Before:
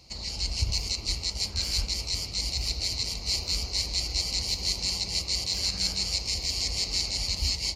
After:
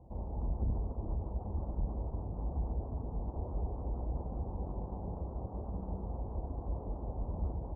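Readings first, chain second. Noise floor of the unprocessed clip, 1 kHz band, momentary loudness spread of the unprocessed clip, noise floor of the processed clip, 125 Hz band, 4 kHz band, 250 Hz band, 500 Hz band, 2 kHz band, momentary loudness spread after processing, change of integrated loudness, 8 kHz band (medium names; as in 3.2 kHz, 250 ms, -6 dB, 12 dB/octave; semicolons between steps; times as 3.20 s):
-38 dBFS, 0.0 dB, 3 LU, -44 dBFS, -1.0 dB, under -40 dB, +1.5 dB, +1.0 dB, under -40 dB, 4 LU, -12.0 dB, under -40 dB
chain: overload inside the chain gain 31.5 dB; steep low-pass 950 Hz 48 dB/octave; trim +3 dB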